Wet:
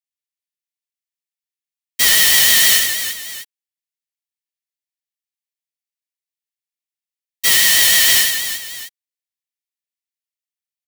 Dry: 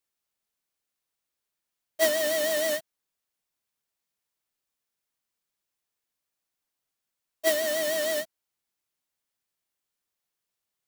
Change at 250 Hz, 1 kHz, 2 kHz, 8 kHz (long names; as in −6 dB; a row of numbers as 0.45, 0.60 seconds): +0.5, +8.0, +16.0, +20.5 decibels